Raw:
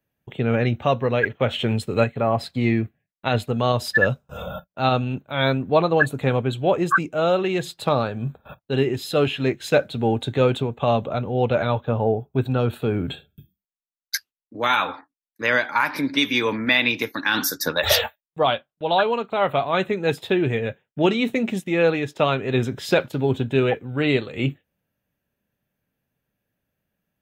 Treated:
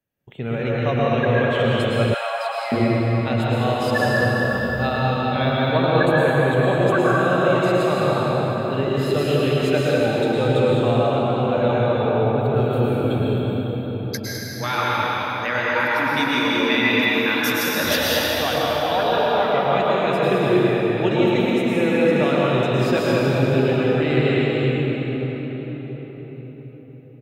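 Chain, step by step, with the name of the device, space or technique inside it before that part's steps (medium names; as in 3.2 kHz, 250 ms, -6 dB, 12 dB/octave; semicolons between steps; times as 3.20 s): cave (delay 206 ms -9 dB; reverberation RT60 5.2 s, pre-delay 100 ms, DRR -7 dB); 2.14–2.72 s: steep high-pass 620 Hz 48 dB/octave; trim -6 dB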